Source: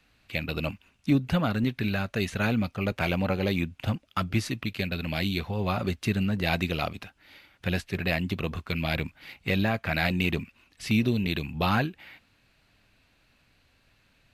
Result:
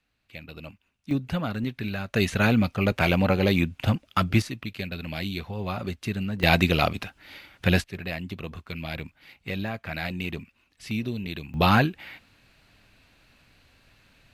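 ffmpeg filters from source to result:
-af "asetnsamples=n=441:p=0,asendcmd='1.11 volume volume -3dB;2.14 volume volume 5dB;4.42 volume volume -3dB;6.43 volume volume 7dB;7.84 volume volume -5.5dB;11.54 volume volume 5.5dB',volume=-11dB"

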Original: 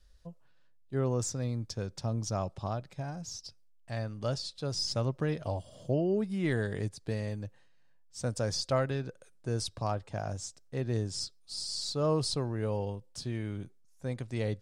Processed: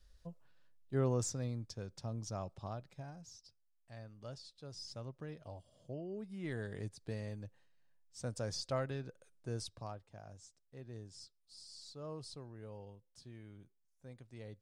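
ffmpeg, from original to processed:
-af "volume=5dB,afade=t=out:st=1.04:d=0.7:silence=0.473151,afade=t=out:st=2.91:d=0.5:silence=0.473151,afade=t=in:st=6.1:d=0.88:silence=0.421697,afade=t=out:st=9.53:d=0.51:silence=0.334965"

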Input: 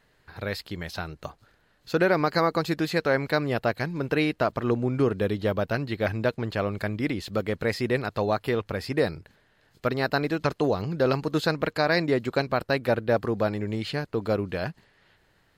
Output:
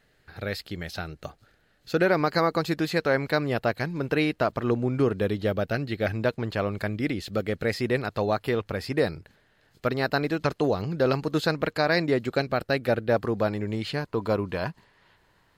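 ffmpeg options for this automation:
-af "asetnsamples=n=441:p=0,asendcmd='2.06 equalizer g -1.5;5.43 equalizer g -12;6.12 equalizer g -0.5;6.88 equalizer g -11.5;7.73 equalizer g -2;12.27 equalizer g -9;13.1 equalizer g 0.5;14.01 equalizer g 9',equalizer=f=1k:t=o:w=0.26:g=-10.5"

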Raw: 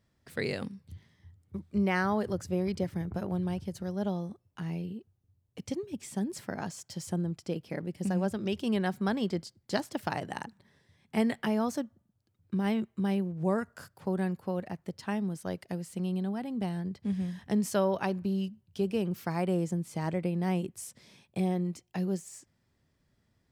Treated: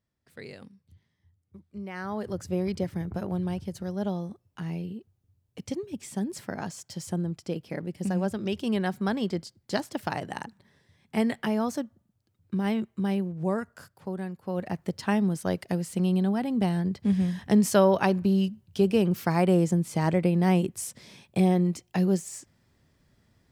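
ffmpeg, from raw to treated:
-af "volume=14.5dB,afade=t=in:st=1.93:d=0.59:silence=0.237137,afade=t=out:st=13.24:d=1.15:silence=0.446684,afade=t=in:st=14.39:d=0.38:silence=0.237137"

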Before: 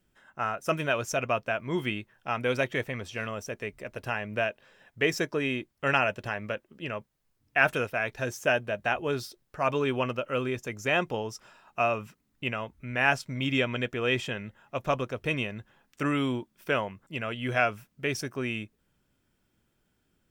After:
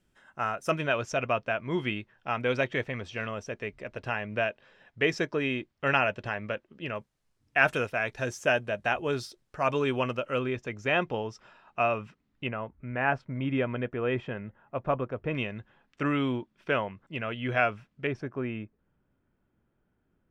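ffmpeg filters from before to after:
-af "asetnsamples=n=441:p=0,asendcmd='0.71 lowpass f 4700;6.96 lowpass f 9300;10.39 lowpass f 3700;12.47 lowpass f 1500;15.35 lowpass f 3400;18.07 lowpass f 1500',lowpass=11k"

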